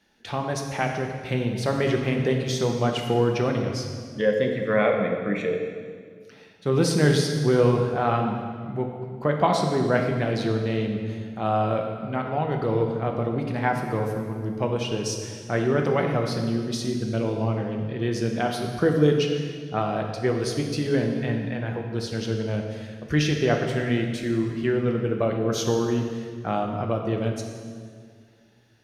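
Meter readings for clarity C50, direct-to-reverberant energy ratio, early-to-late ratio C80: 4.5 dB, 2.0 dB, 5.5 dB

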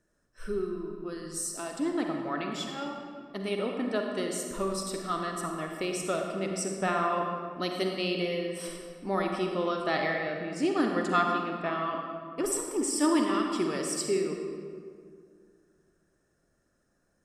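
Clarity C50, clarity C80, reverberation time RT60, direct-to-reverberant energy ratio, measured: 2.5 dB, 4.0 dB, 2.1 s, 2.0 dB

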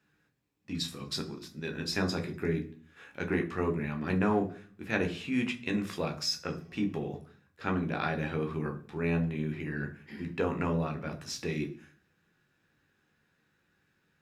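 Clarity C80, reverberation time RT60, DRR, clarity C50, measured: 18.0 dB, 0.40 s, 3.0 dB, 13.5 dB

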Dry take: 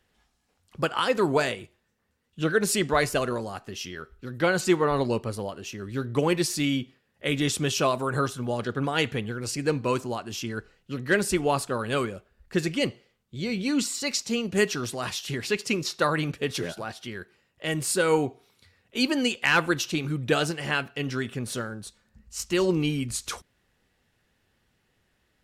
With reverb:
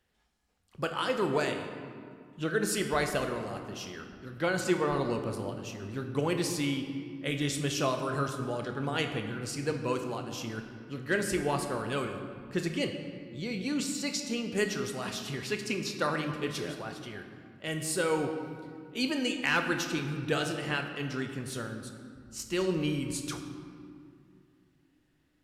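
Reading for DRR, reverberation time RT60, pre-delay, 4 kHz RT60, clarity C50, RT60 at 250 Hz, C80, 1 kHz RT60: 5.0 dB, 2.4 s, 27 ms, 1.4 s, 7.0 dB, 3.5 s, 8.0 dB, 2.2 s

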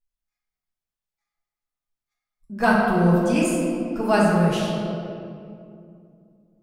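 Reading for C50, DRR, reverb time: -1.0 dB, -5.5 dB, 2.5 s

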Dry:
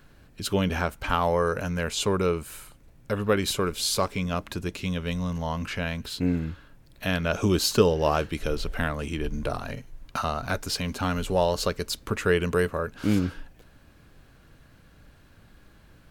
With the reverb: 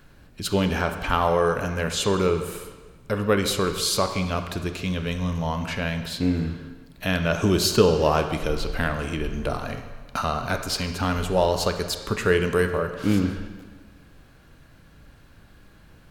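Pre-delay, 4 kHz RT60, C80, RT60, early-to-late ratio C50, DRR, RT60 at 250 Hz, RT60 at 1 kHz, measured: 24 ms, 1.2 s, 9.5 dB, 1.4 s, 8.0 dB, 7.0 dB, 1.4 s, 1.4 s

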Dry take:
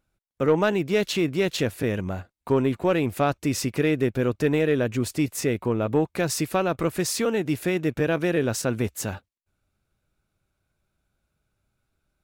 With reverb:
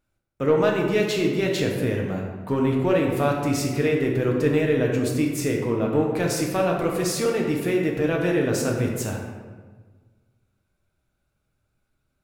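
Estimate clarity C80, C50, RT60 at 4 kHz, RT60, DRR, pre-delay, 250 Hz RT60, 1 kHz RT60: 4.5 dB, 2.5 dB, 0.85 s, 1.4 s, -0.5 dB, 6 ms, 1.7 s, 1.4 s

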